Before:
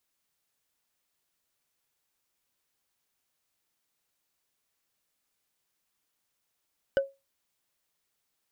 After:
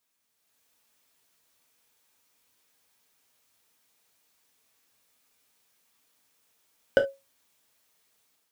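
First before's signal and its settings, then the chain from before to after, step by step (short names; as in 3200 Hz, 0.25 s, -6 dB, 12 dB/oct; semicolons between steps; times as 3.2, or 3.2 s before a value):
wood hit, lowest mode 548 Hz, decay 0.23 s, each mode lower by 8 dB, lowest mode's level -17.5 dB
low shelf 67 Hz -9.5 dB; AGC gain up to 8 dB; non-linear reverb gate 90 ms falling, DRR 2.5 dB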